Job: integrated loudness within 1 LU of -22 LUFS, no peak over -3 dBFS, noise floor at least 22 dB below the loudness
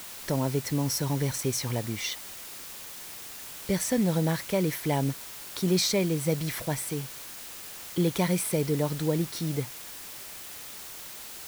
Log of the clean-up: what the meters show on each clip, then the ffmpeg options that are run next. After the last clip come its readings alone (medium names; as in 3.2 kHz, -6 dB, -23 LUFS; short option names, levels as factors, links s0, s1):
noise floor -42 dBFS; noise floor target -52 dBFS; loudness -29.5 LUFS; peak level -13.0 dBFS; loudness target -22.0 LUFS
-> -af "afftdn=nr=10:nf=-42"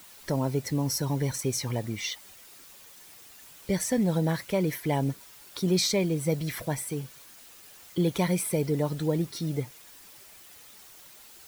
noise floor -51 dBFS; loudness -28.5 LUFS; peak level -13.5 dBFS; loudness target -22.0 LUFS
-> -af "volume=2.11"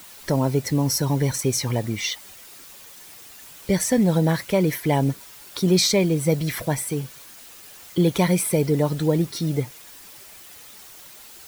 loudness -22.0 LUFS; peak level -7.0 dBFS; noise floor -45 dBFS